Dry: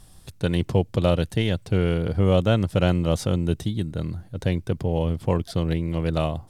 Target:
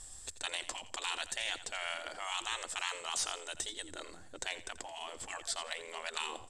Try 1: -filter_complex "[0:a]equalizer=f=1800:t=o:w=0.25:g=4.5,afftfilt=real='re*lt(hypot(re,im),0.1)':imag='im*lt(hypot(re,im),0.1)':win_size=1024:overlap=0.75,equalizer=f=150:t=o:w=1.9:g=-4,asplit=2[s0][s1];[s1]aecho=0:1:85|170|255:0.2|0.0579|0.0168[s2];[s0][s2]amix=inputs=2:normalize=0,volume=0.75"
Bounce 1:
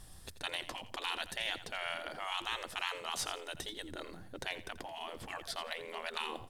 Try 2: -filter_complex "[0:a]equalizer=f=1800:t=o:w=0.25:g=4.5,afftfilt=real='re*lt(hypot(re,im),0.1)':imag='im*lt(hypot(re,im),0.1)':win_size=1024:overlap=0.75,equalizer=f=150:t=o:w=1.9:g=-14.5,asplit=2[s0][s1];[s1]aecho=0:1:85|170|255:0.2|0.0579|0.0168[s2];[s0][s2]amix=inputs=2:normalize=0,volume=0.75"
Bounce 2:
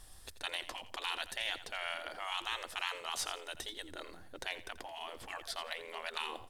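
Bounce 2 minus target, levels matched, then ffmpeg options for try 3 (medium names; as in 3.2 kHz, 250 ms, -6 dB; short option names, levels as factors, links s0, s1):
8 kHz band -6.5 dB
-filter_complex "[0:a]lowpass=f=7700:t=q:w=9.4,equalizer=f=1800:t=o:w=0.25:g=4.5,afftfilt=real='re*lt(hypot(re,im),0.1)':imag='im*lt(hypot(re,im),0.1)':win_size=1024:overlap=0.75,equalizer=f=150:t=o:w=1.9:g=-14.5,asplit=2[s0][s1];[s1]aecho=0:1:85|170|255:0.2|0.0579|0.0168[s2];[s0][s2]amix=inputs=2:normalize=0,volume=0.75"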